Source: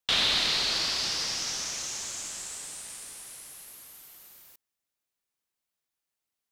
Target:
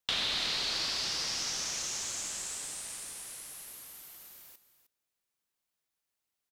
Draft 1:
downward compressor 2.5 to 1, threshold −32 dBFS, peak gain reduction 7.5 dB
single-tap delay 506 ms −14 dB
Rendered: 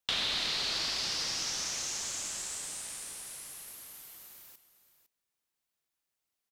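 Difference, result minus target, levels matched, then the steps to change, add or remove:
echo 197 ms late
change: single-tap delay 309 ms −14 dB

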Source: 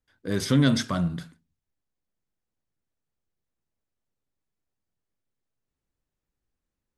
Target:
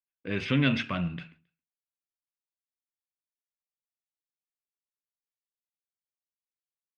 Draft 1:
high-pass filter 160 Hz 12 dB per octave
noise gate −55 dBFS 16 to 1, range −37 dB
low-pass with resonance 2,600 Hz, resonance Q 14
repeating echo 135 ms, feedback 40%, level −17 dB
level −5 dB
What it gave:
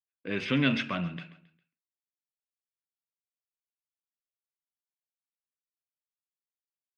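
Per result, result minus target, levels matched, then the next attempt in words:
echo-to-direct +11.5 dB; 125 Hz band −3.0 dB
high-pass filter 160 Hz 12 dB per octave
noise gate −55 dBFS 16 to 1, range −37 dB
low-pass with resonance 2,600 Hz, resonance Q 14
repeating echo 135 ms, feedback 40%, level −28.5 dB
level −5 dB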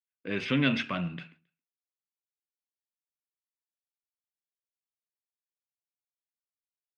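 125 Hz band −3.0 dB
noise gate −55 dBFS 16 to 1, range −37 dB
low-pass with resonance 2,600 Hz, resonance Q 14
repeating echo 135 ms, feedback 40%, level −28.5 dB
level −5 dB

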